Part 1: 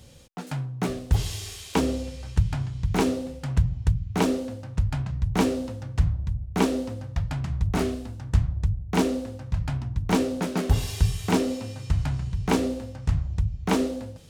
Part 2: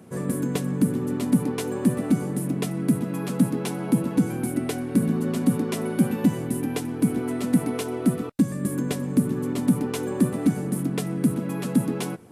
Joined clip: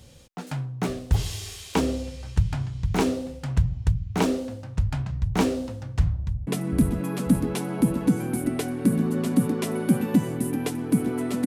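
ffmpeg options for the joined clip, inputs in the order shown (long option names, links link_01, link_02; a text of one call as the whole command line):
ffmpeg -i cue0.wav -i cue1.wav -filter_complex "[0:a]apad=whole_dur=11.46,atrim=end=11.46,atrim=end=6.472[link_01];[1:a]atrim=start=2.568:end=7.56[link_02];[link_01][link_02]acrossfade=duration=0.004:curve1=hsin:curve2=hsin,asplit=2[link_03][link_04];[link_04]afade=type=in:start_time=6.18:duration=0.01,afade=type=out:start_time=6.47:duration=0.01,aecho=0:1:540|1080|1620|2160|2700|3240:1|0.45|0.2025|0.091125|0.0410062|0.0184528[link_05];[link_03][link_05]amix=inputs=2:normalize=0" out.wav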